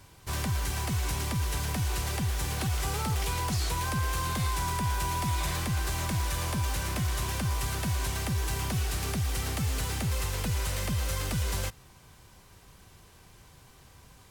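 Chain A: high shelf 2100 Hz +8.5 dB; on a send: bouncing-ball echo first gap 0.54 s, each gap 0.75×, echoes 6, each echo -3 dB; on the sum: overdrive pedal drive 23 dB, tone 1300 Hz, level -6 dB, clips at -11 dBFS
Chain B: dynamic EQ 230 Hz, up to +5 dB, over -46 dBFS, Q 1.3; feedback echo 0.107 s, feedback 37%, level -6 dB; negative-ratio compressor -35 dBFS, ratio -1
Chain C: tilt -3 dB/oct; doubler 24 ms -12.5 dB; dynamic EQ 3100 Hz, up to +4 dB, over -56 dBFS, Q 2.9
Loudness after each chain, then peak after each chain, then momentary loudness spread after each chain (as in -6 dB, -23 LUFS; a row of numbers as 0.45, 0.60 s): -24.5, -35.5, -22.5 LUFS; -14.0, -19.0, -10.5 dBFS; 7, 12, 1 LU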